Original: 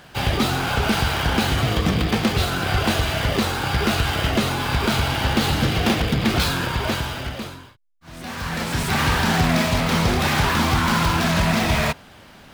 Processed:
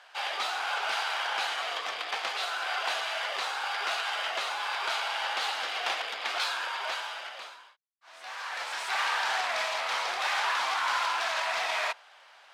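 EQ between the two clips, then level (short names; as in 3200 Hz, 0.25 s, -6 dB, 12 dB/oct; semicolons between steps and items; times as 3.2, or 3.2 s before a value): HPF 690 Hz 24 dB/oct; air absorption 60 m; -5.5 dB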